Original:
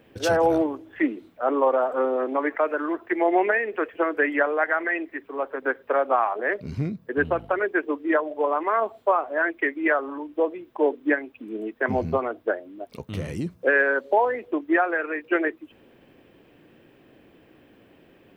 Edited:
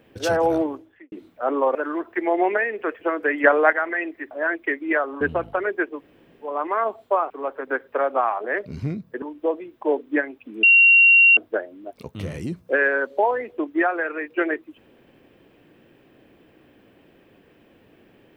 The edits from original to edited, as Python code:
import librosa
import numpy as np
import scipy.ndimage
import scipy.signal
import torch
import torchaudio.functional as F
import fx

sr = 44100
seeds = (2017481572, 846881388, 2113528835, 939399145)

y = fx.edit(x, sr, fx.fade_out_span(start_s=0.75, length_s=0.37, curve='qua'),
    fx.cut(start_s=1.75, length_s=0.94),
    fx.clip_gain(start_s=4.38, length_s=0.29, db=6.5),
    fx.swap(start_s=5.25, length_s=1.92, other_s=9.26, other_length_s=0.9),
    fx.room_tone_fill(start_s=7.9, length_s=0.56, crossfade_s=0.24),
    fx.bleep(start_s=11.57, length_s=0.74, hz=2750.0, db=-9.5), tone=tone)